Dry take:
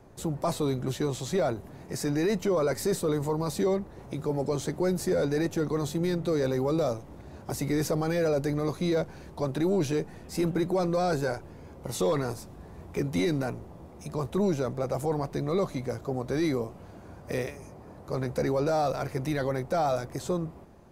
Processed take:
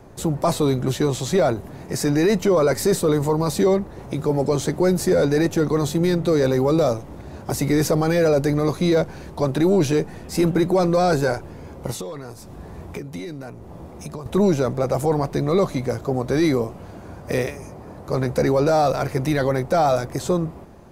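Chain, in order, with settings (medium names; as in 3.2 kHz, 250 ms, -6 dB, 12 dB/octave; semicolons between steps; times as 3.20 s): 11.91–14.26 s: compression 12:1, threshold -38 dBFS, peak gain reduction 16 dB; trim +8.5 dB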